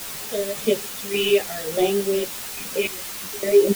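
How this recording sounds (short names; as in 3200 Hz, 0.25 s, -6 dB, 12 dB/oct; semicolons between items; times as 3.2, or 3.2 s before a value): phasing stages 2, 0.62 Hz, lowest notch 800–1700 Hz; random-step tremolo, depth 95%; a quantiser's noise floor 6-bit, dither triangular; a shimmering, thickened sound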